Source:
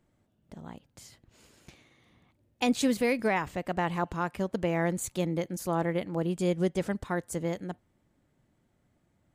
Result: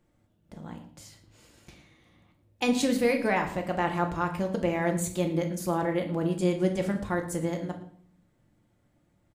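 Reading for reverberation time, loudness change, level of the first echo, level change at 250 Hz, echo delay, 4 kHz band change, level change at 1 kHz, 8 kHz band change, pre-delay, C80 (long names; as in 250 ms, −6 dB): 0.55 s, +2.0 dB, −18.0 dB, +2.0 dB, 112 ms, +1.5 dB, +2.0 dB, +1.5 dB, 4 ms, 13.0 dB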